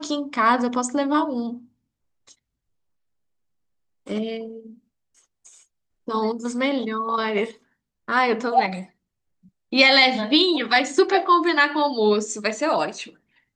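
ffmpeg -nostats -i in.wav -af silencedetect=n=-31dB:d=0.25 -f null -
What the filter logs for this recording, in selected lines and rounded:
silence_start: 1.54
silence_end: 4.07 | silence_duration: 2.53
silence_start: 4.57
silence_end: 6.08 | silence_duration: 1.51
silence_start: 7.50
silence_end: 8.08 | silence_duration: 0.58
silence_start: 8.82
silence_end: 9.73 | silence_duration: 0.90
silence_start: 13.03
silence_end: 13.55 | silence_duration: 0.52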